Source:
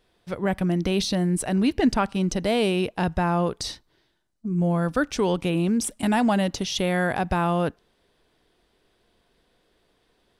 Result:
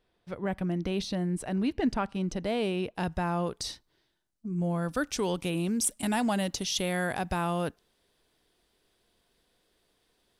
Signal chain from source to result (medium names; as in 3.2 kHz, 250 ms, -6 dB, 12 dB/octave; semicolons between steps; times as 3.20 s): treble shelf 4.6 kHz -6.5 dB, from 2.95 s +5 dB, from 4.89 s +11 dB; trim -7 dB